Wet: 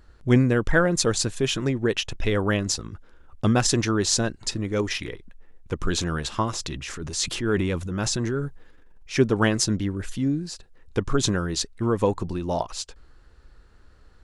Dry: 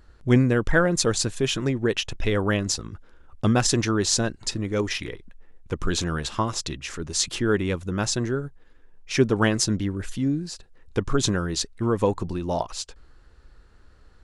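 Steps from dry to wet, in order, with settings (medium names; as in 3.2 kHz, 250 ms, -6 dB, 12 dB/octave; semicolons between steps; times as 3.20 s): 6.53–9.16 s: transient shaper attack -6 dB, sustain +6 dB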